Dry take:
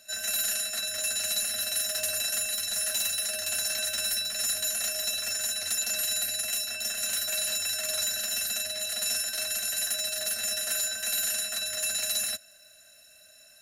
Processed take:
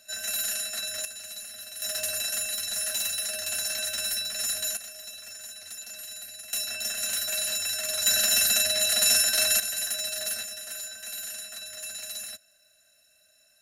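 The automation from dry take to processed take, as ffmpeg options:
ffmpeg -i in.wav -af "asetnsamples=nb_out_samples=441:pad=0,asendcmd='1.05 volume volume -11dB;1.82 volume volume -0.5dB;4.77 volume volume -11.5dB;6.53 volume volume 0.5dB;8.06 volume volume 8dB;9.6 volume volume -0.5dB;10.43 volume volume -8dB',volume=-1dB" out.wav

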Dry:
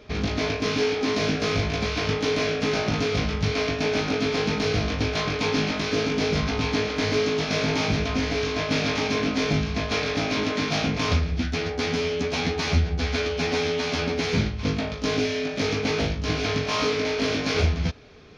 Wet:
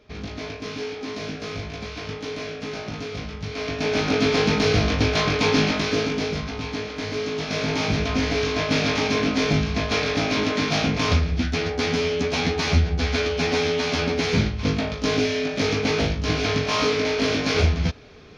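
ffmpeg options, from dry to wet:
ffmpeg -i in.wav -af "volume=12dB,afade=type=in:start_time=3.5:duration=0.72:silence=0.251189,afade=type=out:start_time=5.62:duration=0.81:silence=0.334965,afade=type=in:start_time=7.14:duration=1.09:silence=0.421697" out.wav

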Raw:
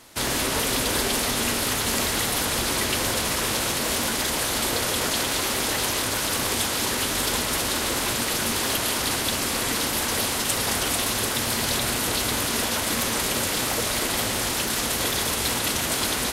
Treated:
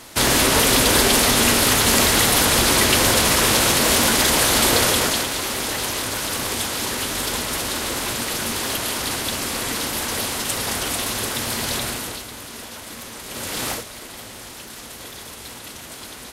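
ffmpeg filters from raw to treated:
ffmpeg -i in.wav -af "volume=19.5dB,afade=type=out:start_time=4.82:duration=0.48:silence=0.398107,afade=type=out:start_time=11.79:duration=0.47:silence=0.281838,afade=type=in:start_time=13.25:duration=0.45:silence=0.266073,afade=type=out:start_time=13.7:duration=0.14:silence=0.237137" out.wav

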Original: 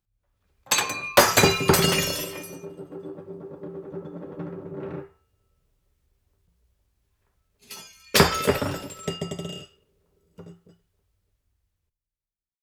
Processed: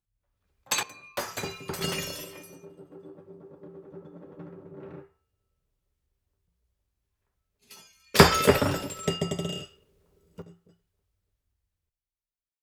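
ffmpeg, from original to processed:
ffmpeg -i in.wav -af "asetnsamples=nb_out_samples=441:pad=0,asendcmd='0.83 volume volume -17dB;1.81 volume volume -9dB;8.19 volume volume 2dB;10.42 volume volume -6dB',volume=-5.5dB" out.wav

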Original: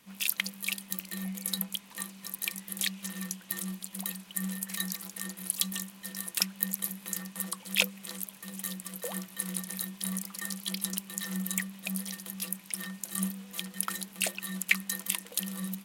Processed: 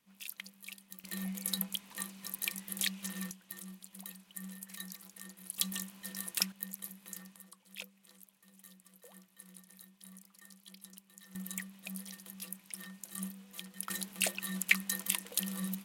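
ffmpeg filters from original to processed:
ffmpeg -i in.wav -af "asetnsamples=nb_out_samples=441:pad=0,asendcmd='1.04 volume volume -2.5dB;3.31 volume volume -11.5dB;5.58 volume volume -3.5dB;6.52 volume volume -11dB;7.36 volume volume -20dB;11.35 volume volume -9dB;13.9 volume volume -1.5dB',volume=-15dB" out.wav

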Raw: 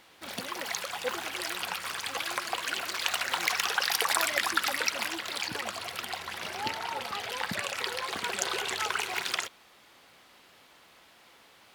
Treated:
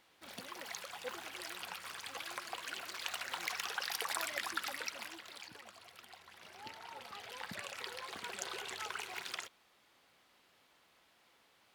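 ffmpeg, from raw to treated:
ffmpeg -i in.wav -af "volume=-3dB,afade=type=out:start_time=4.6:duration=1:silence=0.375837,afade=type=in:start_time=6.33:duration=1.28:silence=0.398107" out.wav

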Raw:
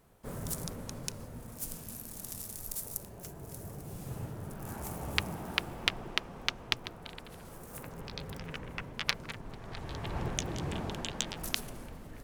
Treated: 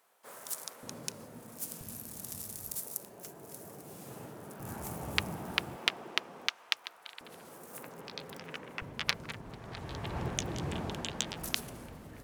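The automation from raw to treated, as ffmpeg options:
ffmpeg -i in.wav -af "asetnsamples=nb_out_samples=441:pad=0,asendcmd='0.83 highpass f 190;1.81 highpass f 81;2.81 highpass f 240;4.6 highpass f 83;5.76 highpass f 280;6.48 highpass f 1000;7.21 highpass f 240;8.82 highpass f 58',highpass=750" out.wav

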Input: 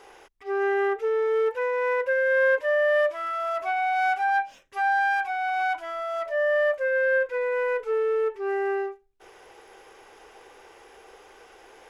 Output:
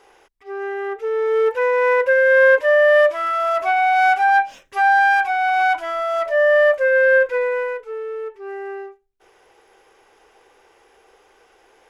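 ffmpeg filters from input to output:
ffmpeg -i in.wav -af "volume=8.5dB,afade=type=in:start_time=0.84:duration=0.85:silence=0.281838,afade=type=out:start_time=7.28:duration=0.54:silence=0.237137" out.wav

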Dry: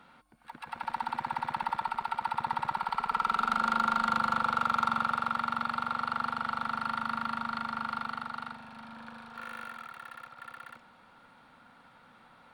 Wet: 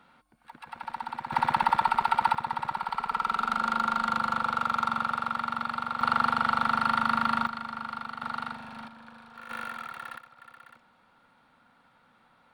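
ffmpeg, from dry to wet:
ffmpeg -i in.wav -af "asetnsamples=nb_out_samples=441:pad=0,asendcmd='1.32 volume volume 8.5dB;2.35 volume volume 0.5dB;6.01 volume volume 7.5dB;7.47 volume volume -1.5dB;8.22 volume volume 5dB;8.88 volume volume -3dB;9.5 volume volume 5.5dB;10.18 volume volume -5dB',volume=-2dB" out.wav

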